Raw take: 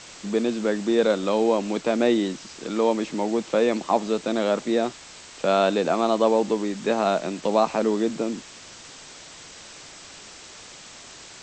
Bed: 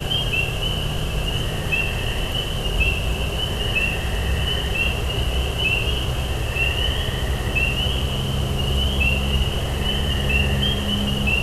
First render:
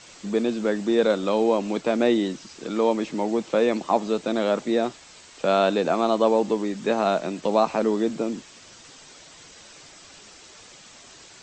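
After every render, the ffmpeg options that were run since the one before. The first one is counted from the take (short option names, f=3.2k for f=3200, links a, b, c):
-af "afftdn=nr=6:nf=-44"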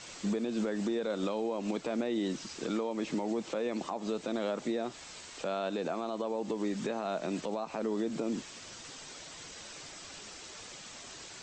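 -af "acompressor=threshold=-24dB:ratio=6,alimiter=limit=-24dB:level=0:latency=1:release=129"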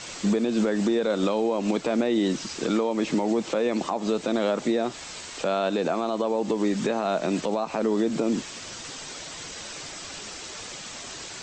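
-af "volume=9dB"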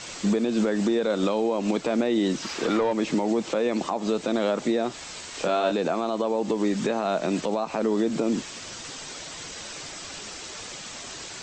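-filter_complex "[0:a]asplit=3[a][b][c];[a]afade=t=out:st=2.42:d=0.02[d];[b]asplit=2[e][f];[f]highpass=f=720:p=1,volume=15dB,asoftclip=type=tanh:threshold=-14.5dB[g];[e][g]amix=inputs=2:normalize=0,lowpass=f=2.1k:p=1,volume=-6dB,afade=t=in:st=2.42:d=0.02,afade=t=out:st=2.92:d=0.02[h];[c]afade=t=in:st=2.92:d=0.02[i];[d][h][i]amix=inputs=3:normalize=0,asettb=1/sr,asplit=3[j][k][l];[j]atrim=end=5.314[m];[k]atrim=start=5.31:end=5.72,asetpts=PTS-STARTPTS,afade=t=in:d=0.004:c=qsin,afade=t=out:st=0.406:d=0.004:c=qsin,asplit=2[n][o];[o]adelay=28,volume=-4dB[p];[n][p]amix=inputs=2:normalize=0,atrim=end_sample=18081[q];[l]atrim=start=5.716[r];[m][q]acrossfade=d=0.004:c1=hsin:c2=qsin[s];[s][r]acrossfade=d=0.004:c1=qsin:c2=hsin"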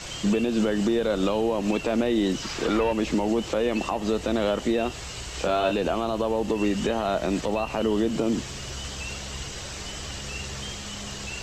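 -filter_complex "[1:a]volume=-17dB[a];[0:a][a]amix=inputs=2:normalize=0"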